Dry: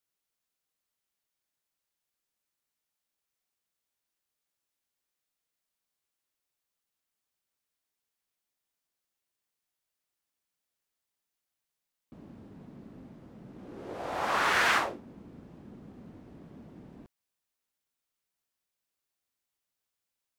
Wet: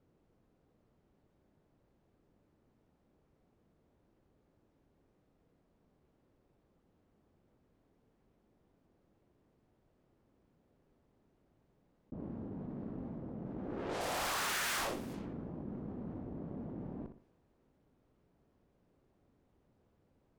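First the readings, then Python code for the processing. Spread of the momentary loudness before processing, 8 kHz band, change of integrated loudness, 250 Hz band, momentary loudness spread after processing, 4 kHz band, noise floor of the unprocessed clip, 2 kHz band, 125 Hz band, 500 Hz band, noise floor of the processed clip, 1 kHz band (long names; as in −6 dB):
22 LU, +2.0 dB, −12.0 dB, +3.5 dB, 12 LU, −4.5 dB, below −85 dBFS, −10.0 dB, +4.5 dB, −3.5 dB, −75 dBFS, −9.0 dB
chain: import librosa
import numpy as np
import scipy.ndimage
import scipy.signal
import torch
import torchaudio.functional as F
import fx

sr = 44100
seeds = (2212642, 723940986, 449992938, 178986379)

p1 = librosa.effects.preemphasis(x, coef=0.8, zi=[0.0])
p2 = fx.env_lowpass(p1, sr, base_hz=330.0, full_db=-47.5)
p3 = fx.schmitt(p2, sr, flips_db=-36.0)
p4 = p2 + (p3 * 10.0 ** (-4.0 / 20.0))
p5 = fx.tube_stage(p4, sr, drive_db=51.0, bias=0.7)
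p6 = p5 + fx.room_flutter(p5, sr, wall_m=10.4, rt60_s=0.23, dry=0)
p7 = fx.env_flatten(p6, sr, amount_pct=50)
y = p7 * 10.0 ** (16.0 / 20.0)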